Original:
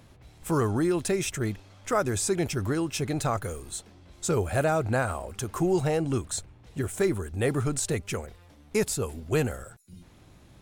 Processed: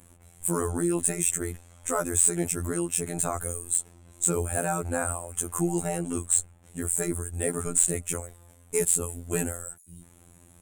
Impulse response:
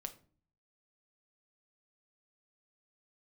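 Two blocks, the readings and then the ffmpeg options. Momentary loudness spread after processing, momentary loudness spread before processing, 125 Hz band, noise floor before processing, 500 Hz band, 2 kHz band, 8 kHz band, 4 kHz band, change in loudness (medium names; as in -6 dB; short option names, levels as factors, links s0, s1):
11 LU, 10 LU, -4.5 dB, -55 dBFS, -3.5 dB, -3.5 dB, +9.5 dB, -7.5 dB, +1.5 dB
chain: -af "afftfilt=real='hypot(re,im)*cos(PI*b)':imag='0':win_size=2048:overlap=0.75,highshelf=f=6400:t=q:w=3:g=10.5,acontrast=86,volume=0.501"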